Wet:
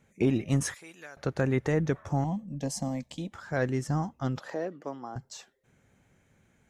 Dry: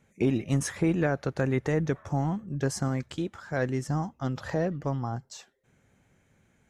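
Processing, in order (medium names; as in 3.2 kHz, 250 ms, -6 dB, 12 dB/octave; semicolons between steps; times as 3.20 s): 0.74–1.17 s: differentiator; 2.24–3.32 s: static phaser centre 380 Hz, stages 6; 4.39–5.16 s: ladder high-pass 220 Hz, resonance 20%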